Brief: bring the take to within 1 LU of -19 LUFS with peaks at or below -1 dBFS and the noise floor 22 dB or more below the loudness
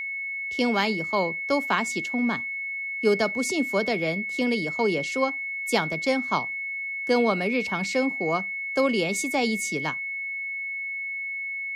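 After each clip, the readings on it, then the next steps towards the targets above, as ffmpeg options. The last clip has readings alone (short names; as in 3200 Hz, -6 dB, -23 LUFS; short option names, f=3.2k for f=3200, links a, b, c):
steady tone 2200 Hz; tone level -29 dBFS; loudness -25.5 LUFS; peak -9.0 dBFS; loudness target -19.0 LUFS
-> -af "bandreject=f=2.2k:w=30"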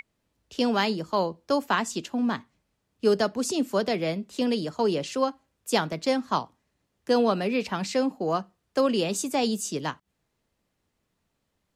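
steady tone none; loudness -27.0 LUFS; peak -10.0 dBFS; loudness target -19.0 LUFS
-> -af "volume=8dB"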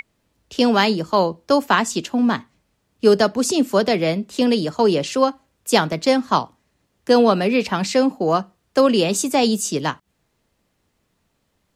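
loudness -19.0 LUFS; peak -2.0 dBFS; noise floor -70 dBFS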